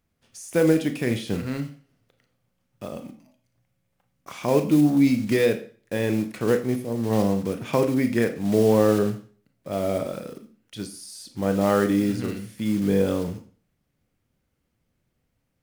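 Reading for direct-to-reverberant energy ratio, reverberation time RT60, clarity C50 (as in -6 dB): 7.0 dB, 0.40 s, 12.0 dB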